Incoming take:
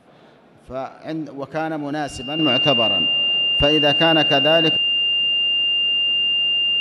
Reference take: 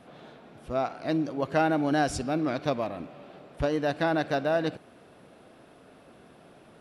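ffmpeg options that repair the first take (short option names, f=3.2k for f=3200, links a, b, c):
-af "bandreject=f=2.8k:w=30,asetnsamples=n=441:p=0,asendcmd='2.39 volume volume -8.5dB',volume=0dB"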